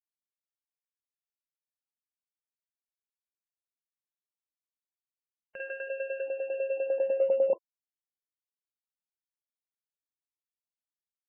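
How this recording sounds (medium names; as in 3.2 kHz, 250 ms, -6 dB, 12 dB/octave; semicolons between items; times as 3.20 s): a quantiser's noise floor 6-bit, dither none; tremolo saw down 10 Hz, depth 85%; MP3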